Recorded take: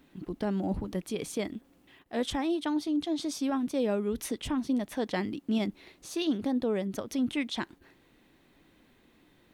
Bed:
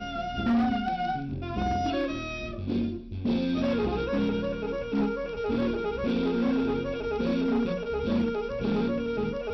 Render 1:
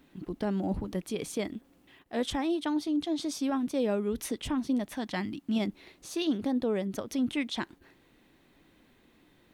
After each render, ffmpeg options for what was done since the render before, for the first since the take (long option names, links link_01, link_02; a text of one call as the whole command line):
ffmpeg -i in.wav -filter_complex "[0:a]asettb=1/sr,asplit=3[link_01][link_02][link_03];[link_01]atrim=end=4.944[link_04];[link_02]atrim=start=4.94:end=5.56,asetpts=PTS-STARTPTS,afade=type=in:duration=0.004:curve=qsin,afade=type=out:start_time=0.616:duration=0.004:curve=qsin,equalizer=frequency=460:width=2.6:gain=-12[link_05];[link_03]atrim=start=5.556[link_06];[link_04][link_05]acrossfade=duration=0.004:curve1=hsin:curve2=qsin[link_07];[link_07][link_06]acrossfade=duration=0.004:curve1=qsin:curve2=hsin" out.wav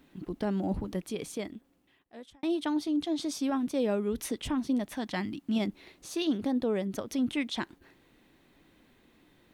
ffmpeg -i in.wav -filter_complex "[0:a]asplit=2[link_01][link_02];[link_01]atrim=end=2.43,asetpts=PTS-STARTPTS,afade=type=out:start_time=0.88:duration=1.55[link_03];[link_02]atrim=start=2.43,asetpts=PTS-STARTPTS,afade=type=in:duration=0.004:curve=hsin[link_04];[link_03][link_04]concat=n=2:v=0:a=1" out.wav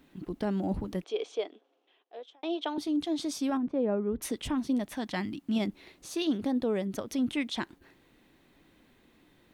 ffmpeg -i in.wav -filter_complex "[0:a]asettb=1/sr,asplit=3[link_01][link_02][link_03];[link_01]atrim=end=1.044[link_04];[link_02]atrim=start=1.04:end=2.78,asetpts=PTS-STARTPTS,afade=type=in:duration=0.004:curve=qsin,afade=type=out:start_time=1.736:duration=0.004:curve=qsin,highpass=frequency=380:width=0.5412,highpass=frequency=380:width=1.3066,equalizer=frequency=440:width_type=q:width=4:gain=8,equalizer=frequency=710:width_type=q:width=4:gain=6,equalizer=frequency=1900:width_type=q:width=4:gain=-6,equalizer=frequency=3200:width_type=q:width=4:gain=5,equalizer=frequency=4700:width_type=q:width=4:gain=-5,lowpass=frequency=5400:width=0.5412,lowpass=frequency=5400:width=1.3066[link_05];[link_03]atrim=start=2.776[link_06];[link_04][link_05]acrossfade=duration=0.004:curve1=hsin:curve2=qsin[link_07];[link_07][link_06]acrossfade=duration=0.004:curve1=qsin:curve2=hsin,asettb=1/sr,asplit=3[link_08][link_09][link_10];[link_08]atrim=end=3.574[link_11];[link_09]atrim=start=3.57:end=4.22,asetpts=PTS-STARTPTS,afade=type=in:duration=0.004:curve=qsin,afade=type=out:start_time=0.646:duration=0.004:curve=qsin,lowpass=1300[link_12];[link_10]atrim=start=4.216[link_13];[link_11][link_12]acrossfade=duration=0.004:curve1=hsin:curve2=qsin[link_14];[link_14][link_13]acrossfade=duration=0.004:curve1=qsin:curve2=hsin" out.wav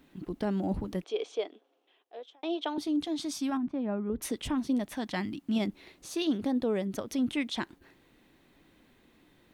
ffmpeg -i in.wav -filter_complex "[0:a]asettb=1/sr,asplit=3[link_01][link_02][link_03];[link_01]atrim=end=3.074[link_04];[link_02]atrim=start=3.07:end=4.1,asetpts=PTS-STARTPTS,afade=type=in:duration=0.004:curve=qsin,afade=type=out:start_time=1.026:duration=0.004:curve=qsin,equalizer=frequency=480:width_type=o:width=0.42:gain=-15[link_05];[link_03]atrim=start=4.096[link_06];[link_04][link_05]acrossfade=duration=0.004:curve1=hsin:curve2=qsin[link_07];[link_07][link_06]acrossfade=duration=0.004:curve1=qsin:curve2=hsin" out.wav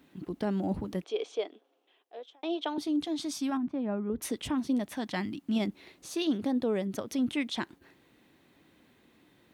ffmpeg -i in.wav -af "highpass=73" out.wav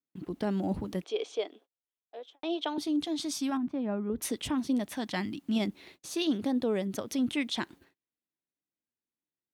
ffmpeg -i in.wav -af "agate=range=-38dB:threshold=-55dB:ratio=16:detection=peak,adynamicequalizer=threshold=0.00398:dfrequency=2600:dqfactor=0.7:tfrequency=2600:tqfactor=0.7:attack=5:release=100:ratio=0.375:range=1.5:mode=boostabove:tftype=highshelf" out.wav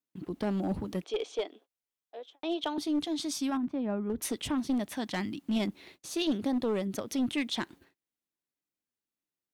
ffmpeg -i in.wav -af "aeval=exprs='clip(val(0),-1,0.0501)':channel_layout=same,aeval=exprs='0.133*(cos(1*acos(clip(val(0)/0.133,-1,1)))-cos(1*PI/2))+0.00106*(cos(4*acos(clip(val(0)/0.133,-1,1)))-cos(4*PI/2))':channel_layout=same" out.wav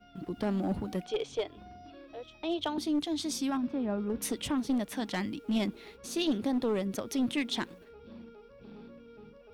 ffmpeg -i in.wav -i bed.wav -filter_complex "[1:a]volume=-22.5dB[link_01];[0:a][link_01]amix=inputs=2:normalize=0" out.wav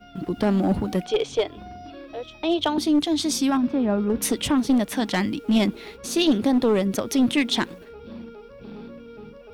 ffmpeg -i in.wav -af "volume=10dB" out.wav